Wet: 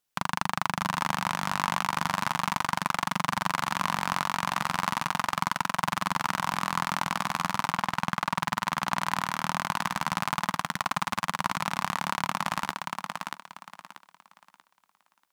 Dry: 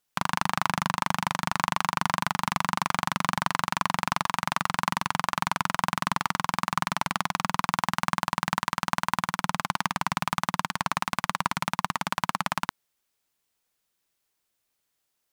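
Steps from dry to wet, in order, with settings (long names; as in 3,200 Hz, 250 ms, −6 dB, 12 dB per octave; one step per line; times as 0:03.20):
0:07.71–0:08.36: low-pass filter 3,700 Hz
on a send: feedback echo with a high-pass in the loop 636 ms, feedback 28%, high-pass 170 Hz, level −4 dB
on the sum: level −2.5 dB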